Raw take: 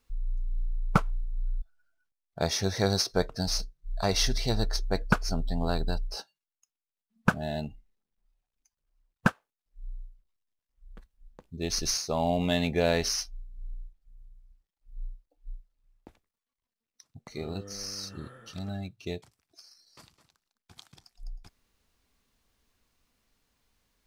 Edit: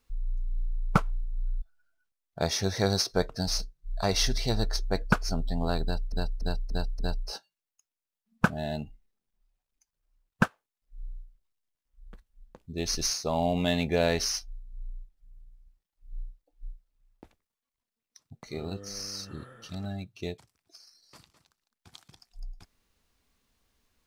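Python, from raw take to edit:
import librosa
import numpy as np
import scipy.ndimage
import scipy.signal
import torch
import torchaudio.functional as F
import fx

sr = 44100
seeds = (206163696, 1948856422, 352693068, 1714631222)

y = fx.edit(x, sr, fx.repeat(start_s=5.83, length_s=0.29, count=5), tone=tone)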